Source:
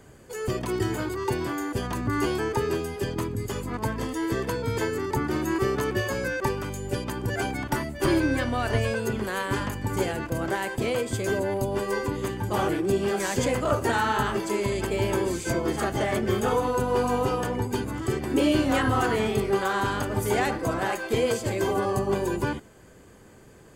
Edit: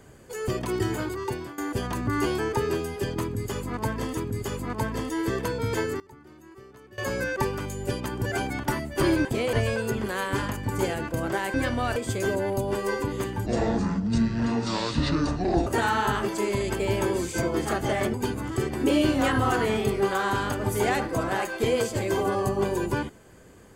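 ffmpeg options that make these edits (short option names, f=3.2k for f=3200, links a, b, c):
-filter_complex "[0:a]asplit=12[a][b][c][d][e][f][g][h][i][j][k][l];[a]atrim=end=1.58,asetpts=PTS-STARTPTS,afade=t=out:st=0.88:d=0.7:c=qsin:silence=0.177828[m];[b]atrim=start=1.58:end=4.172,asetpts=PTS-STARTPTS,afade=t=in:d=0.004:c=hsin:silence=0.177828[n];[c]atrim=start=3.208:end=5.04,asetpts=PTS-STARTPTS,afade=t=out:st=1.662:d=0.17:c=log:silence=0.0707946[o];[d]atrim=start=5.04:end=6.02,asetpts=PTS-STARTPTS,volume=-23dB[p];[e]atrim=start=6.02:end=8.292,asetpts=PTS-STARTPTS,afade=t=in:d=0.17:c=log:silence=0.0707946[q];[f]atrim=start=10.718:end=11.002[r];[g]atrim=start=8.708:end=10.722[s];[h]atrim=start=8.288:end=8.712[t];[i]atrim=start=10.998:end=12.504[u];[j]atrim=start=12.5:end=13.78,asetpts=PTS-STARTPTS,asetrate=25578,aresample=44100,atrim=end_sample=97324,asetpts=PTS-STARTPTS[v];[k]atrim=start=13.776:end=16.252[w];[l]atrim=start=17.638[x];[m][n]concat=n=2:v=0:a=1[y];[o][p][q]concat=n=3:v=0:a=1[z];[y][z]acrossfade=d=0.004:c1=hsin:c2=hsin[aa];[aa][r]acrossfade=d=0.004:c1=hsin:c2=hsin[ab];[ab][s]acrossfade=d=0.004:c1=hsin:c2=hsin[ac];[ac][t]acrossfade=d=0.004:c1=hsin:c2=hsin[ad];[ad][u]acrossfade=d=0.004:c1=hsin:c2=hsin[ae];[ae][v]acrossfade=d=0.004:c1=hsin:c2=hsin[af];[af][w]acrossfade=d=0.004:c1=hsin:c2=hsin[ag];[ag][x]acrossfade=d=0.004:c1=hsin:c2=hsin"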